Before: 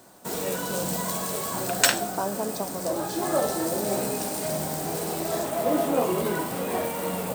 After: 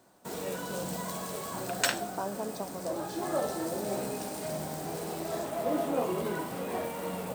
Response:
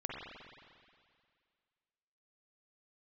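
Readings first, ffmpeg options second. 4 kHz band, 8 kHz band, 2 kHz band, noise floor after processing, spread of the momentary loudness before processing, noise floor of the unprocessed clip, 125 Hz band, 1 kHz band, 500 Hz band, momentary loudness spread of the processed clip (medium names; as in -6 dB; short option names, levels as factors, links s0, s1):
-8.0 dB, -10.0 dB, -6.5 dB, -41 dBFS, 7 LU, -33 dBFS, -6.0 dB, -6.0 dB, -6.0 dB, 7 LU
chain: -filter_complex "[0:a]highshelf=f=5900:g=-6,asplit=2[s0][s1];[s1]acrusher=bits=5:mix=0:aa=0.5,volume=0.398[s2];[s0][s2]amix=inputs=2:normalize=0,volume=0.355"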